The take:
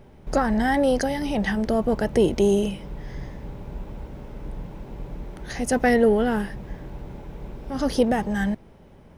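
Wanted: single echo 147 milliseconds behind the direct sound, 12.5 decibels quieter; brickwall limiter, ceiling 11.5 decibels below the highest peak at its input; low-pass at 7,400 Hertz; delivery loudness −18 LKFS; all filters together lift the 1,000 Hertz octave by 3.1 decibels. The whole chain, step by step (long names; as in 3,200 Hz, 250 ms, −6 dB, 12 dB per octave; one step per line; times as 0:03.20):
low-pass filter 7,400 Hz
parametric band 1,000 Hz +4.5 dB
brickwall limiter −18.5 dBFS
single-tap delay 147 ms −12.5 dB
level +11.5 dB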